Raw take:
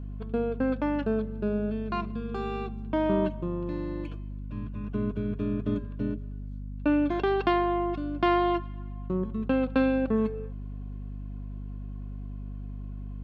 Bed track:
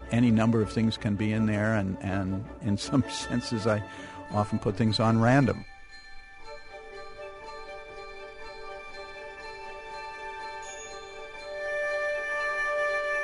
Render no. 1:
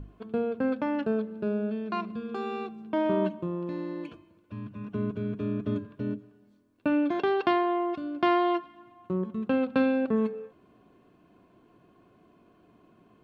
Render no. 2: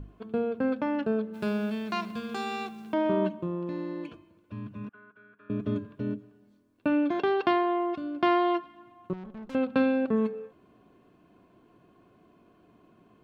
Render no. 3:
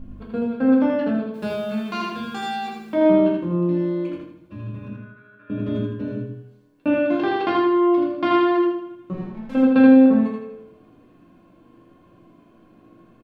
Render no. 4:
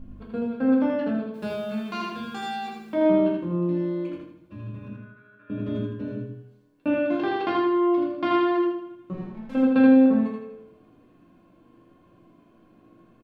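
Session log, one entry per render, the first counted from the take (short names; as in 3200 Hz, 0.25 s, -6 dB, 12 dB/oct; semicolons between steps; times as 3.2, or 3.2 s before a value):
notches 50/100/150/200/250/300 Hz
1.33–2.92 spectral whitening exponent 0.6; 4.89–5.5 band-pass 1500 Hz, Q 5.3; 9.13–9.55 tube stage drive 39 dB, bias 0.75
feedback echo 80 ms, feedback 39%, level -3 dB; shoebox room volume 250 m³, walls furnished, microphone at 2.2 m
gain -4 dB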